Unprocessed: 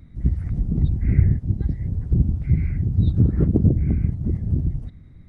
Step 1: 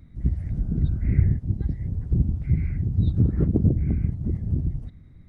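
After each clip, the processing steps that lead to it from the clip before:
healed spectral selection 0:00.34–0:01.10, 560–1,600 Hz both
level −3 dB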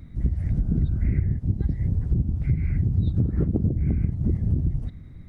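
downward compressor 10 to 1, threshold −24 dBFS, peak gain reduction 13 dB
level +6 dB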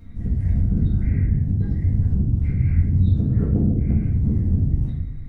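rectangular room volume 190 cubic metres, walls mixed, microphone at 1.7 metres
level −4 dB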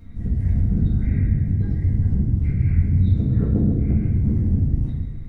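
feedback echo with a high-pass in the loop 132 ms, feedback 67%, high-pass 150 Hz, level −9.5 dB

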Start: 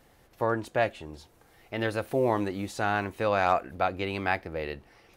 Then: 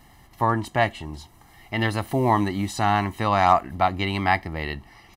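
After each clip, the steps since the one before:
comb filter 1 ms, depth 76%
level +5.5 dB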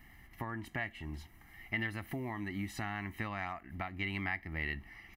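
downward compressor 6 to 1, threshold −28 dBFS, peak gain reduction 15.5 dB
octave-band graphic EQ 125/500/1,000/2,000/4,000/8,000 Hz −5/−9/−9/+8/−9/−10 dB
level −3 dB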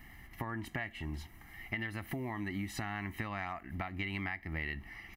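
downward compressor, threshold −38 dBFS, peak gain reduction 8 dB
level +4 dB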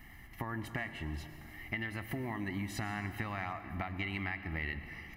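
convolution reverb RT60 2.9 s, pre-delay 100 ms, DRR 10 dB

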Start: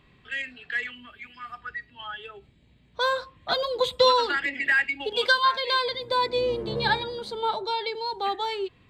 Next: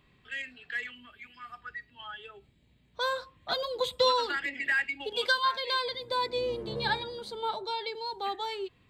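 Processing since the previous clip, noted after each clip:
high-shelf EQ 7,700 Hz +7.5 dB
level −6 dB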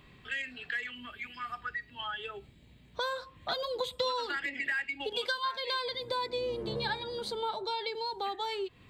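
downward compressor 3 to 1, threshold −42 dBFS, peak gain reduction 15.5 dB
level +7.5 dB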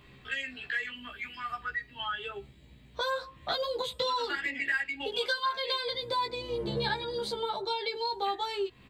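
double-tracking delay 15 ms −2 dB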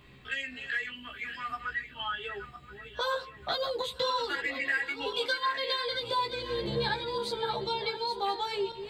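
feedback delay that plays each chunk backwards 513 ms, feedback 51%, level −10 dB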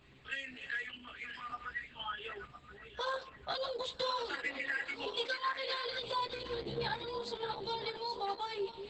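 level −5.5 dB
Opus 10 kbit/s 48,000 Hz

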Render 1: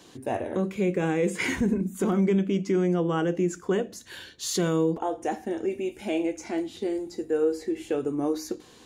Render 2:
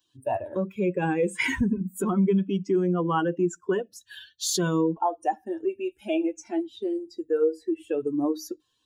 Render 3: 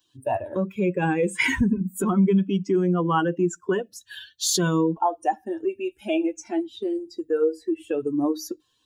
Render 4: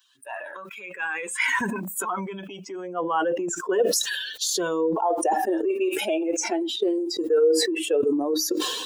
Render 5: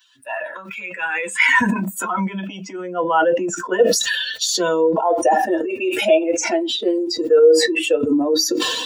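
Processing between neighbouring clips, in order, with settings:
spectral dynamics exaggerated over time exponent 2; dynamic equaliser 940 Hz, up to +7 dB, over −50 dBFS, Q 2.2; downward compressor 1.5 to 1, threshold −36 dBFS, peak gain reduction 6 dB; level +8 dB
dynamic equaliser 460 Hz, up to −3 dB, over −34 dBFS, Q 0.98; level +4 dB
in parallel at +2 dB: compressor whose output falls as the input rises −28 dBFS, ratio −0.5; on the sum: high-pass filter sweep 1,400 Hz → 460 Hz, 0:00.95–0:03.77; level that may fall only so fast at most 35 dB per second; level −6.5 dB
convolution reverb, pre-delay 3 ms, DRR 4.5 dB

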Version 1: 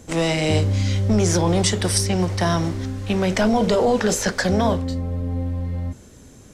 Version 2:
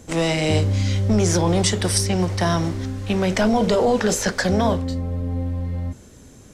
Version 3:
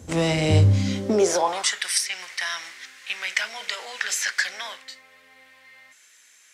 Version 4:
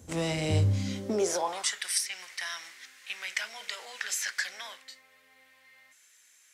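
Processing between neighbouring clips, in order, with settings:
no processing that can be heard
high-pass filter sweep 72 Hz → 2,000 Hz, 0:00.54–0:01.83; level −2 dB
high-shelf EQ 9,900 Hz +9.5 dB; level −8.5 dB

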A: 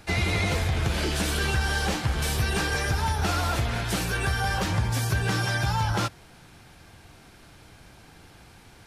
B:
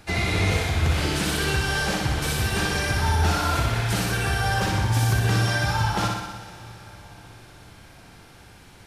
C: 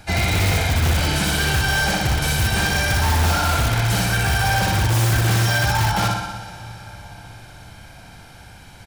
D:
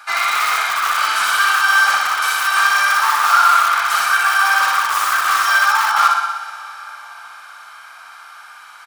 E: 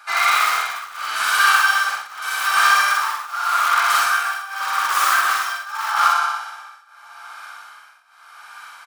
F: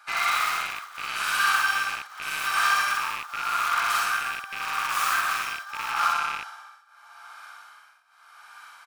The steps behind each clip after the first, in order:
on a send: flutter between parallel walls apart 10.5 metres, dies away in 1 s; on the sum: dense smooth reverb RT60 4.8 s, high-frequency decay 1×, DRR 13 dB
comb filter 1.3 ms, depth 45%; in parallel at −5 dB: wrap-around overflow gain 16 dB
high-pass with resonance 1,200 Hz, resonance Q 13; level +1 dB
parametric band 88 Hz −3.5 dB 0.76 octaves; shaped tremolo triangle 0.84 Hz, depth 95%; double-tracking delay 47 ms −4 dB
loose part that buzzes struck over −56 dBFS, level −14 dBFS; level −7.5 dB

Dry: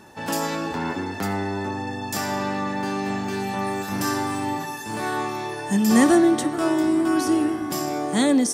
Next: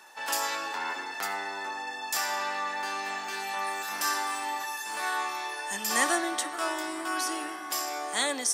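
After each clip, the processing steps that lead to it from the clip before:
high-pass filter 950 Hz 12 dB per octave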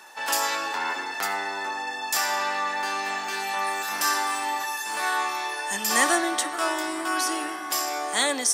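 soft clipping −11.5 dBFS, distortion −31 dB
level +5 dB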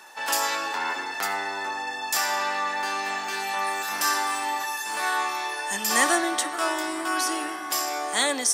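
parametric band 97 Hz +4.5 dB 0.31 octaves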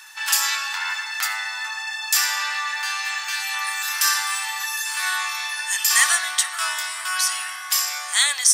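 Bessel high-pass filter 1,800 Hz, order 4
level +7.5 dB

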